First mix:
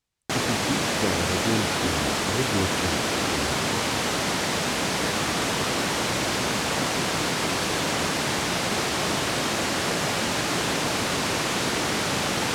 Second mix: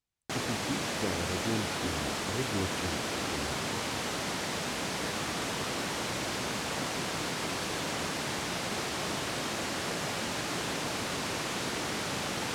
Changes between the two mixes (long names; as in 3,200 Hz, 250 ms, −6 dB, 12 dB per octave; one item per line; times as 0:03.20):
speech −7.0 dB
background −8.5 dB